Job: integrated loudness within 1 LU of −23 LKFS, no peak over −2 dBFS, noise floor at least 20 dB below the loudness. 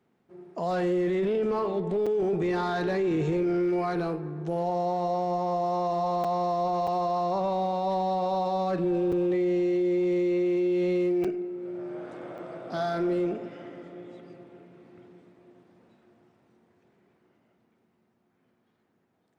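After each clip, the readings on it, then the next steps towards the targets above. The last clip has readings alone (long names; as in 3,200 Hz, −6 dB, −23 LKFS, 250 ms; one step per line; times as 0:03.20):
share of clipped samples 1.6%; peaks flattened at −21.5 dBFS; number of dropouts 6; longest dropout 5.6 ms; integrated loudness −27.5 LKFS; sample peak −21.5 dBFS; target loudness −23.0 LKFS
→ clipped peaks rebuilt −21.5 dBFS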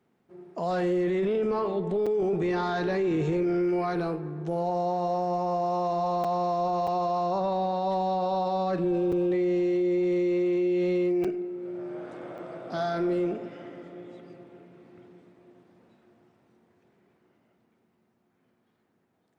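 share of clipped samples 0.0%; number of dropouts 6; longest dropout 5.6 ms
→ repair the gap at 0:02.06/0:06.24/0:06.87/0:09.12/0:11.24/0:12.38, 5.6 ms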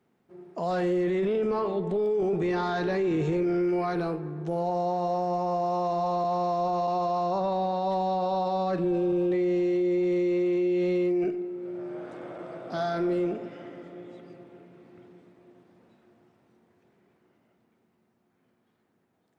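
number of dropouts 0; integrated loudness −27.5 LKFS; sample peak −19.0 dBFS; target loudness −23.0 LKFS
→ level +4.5 dB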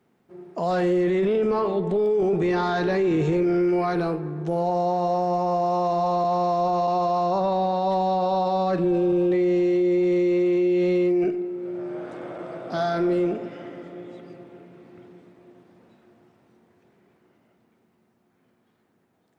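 integrated loudness −23.0 LKFS; sample peak −14.5 dBFS; background noise floor −67 dBFS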